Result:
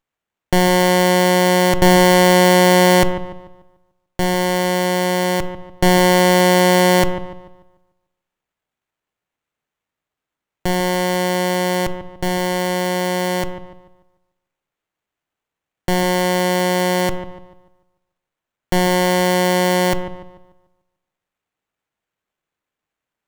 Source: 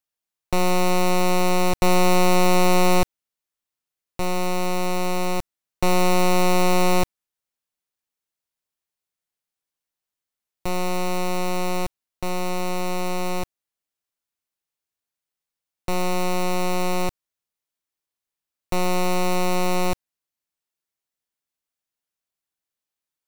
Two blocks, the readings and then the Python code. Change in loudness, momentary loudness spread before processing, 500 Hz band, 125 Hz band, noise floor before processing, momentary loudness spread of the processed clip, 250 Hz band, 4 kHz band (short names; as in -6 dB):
+7.5 dB, 12 LU, +8.5 dB, +7.5 dB, under -85 dBFS, 13 LU, +7.5 dB, +9.0 dB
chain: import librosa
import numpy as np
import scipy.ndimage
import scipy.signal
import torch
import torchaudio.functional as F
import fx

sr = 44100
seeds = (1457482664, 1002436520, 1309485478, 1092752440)

y = fx.echo_bbd(x, sr, ms=147, stages=2048, feedback_pct=38, wet_db=-10.5)
y = fx.room_shoebox(y, sr, seeds[0], volume_m3=610.0, walls='furnished', distance_m=0.51)
y = fx.running_max(y, sr, window=9)
y = y * 10.0 ** (7.0 / 20.0)